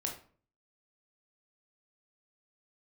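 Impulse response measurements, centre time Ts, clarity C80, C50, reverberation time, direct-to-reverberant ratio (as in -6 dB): 23 ms, 12.0 dB, 7.5 dB, 0.45 s, 0.5 dB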